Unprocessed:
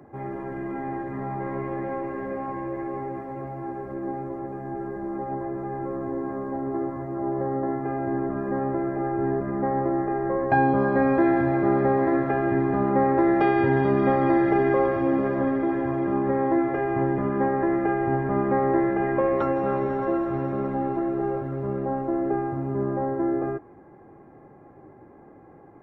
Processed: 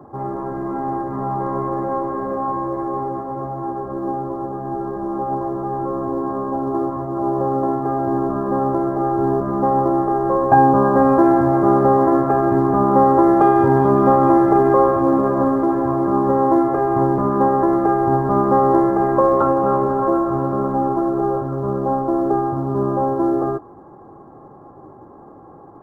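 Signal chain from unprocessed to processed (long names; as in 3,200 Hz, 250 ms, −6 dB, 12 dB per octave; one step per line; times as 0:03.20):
in parallel at −8.5 dB: floating-point word with a short mantissa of 2 bits
on the sum: high shelf with overshoot 1,600 Hz −11 dB, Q 3
level +3 dB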